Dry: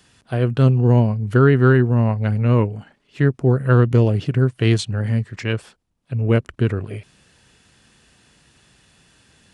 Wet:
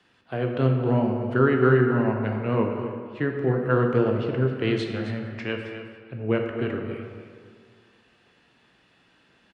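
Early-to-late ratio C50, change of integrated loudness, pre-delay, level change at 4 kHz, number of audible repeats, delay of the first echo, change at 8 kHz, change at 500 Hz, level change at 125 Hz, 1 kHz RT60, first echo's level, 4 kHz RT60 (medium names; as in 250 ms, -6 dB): 3.5 dB, -6.5 dB, 11 ms, -6.0 dB, 1, 266 ms, under -15 dB, -2.5 dB, -10.5 dB, 2.0 s, -11.0 dB, 1.1 s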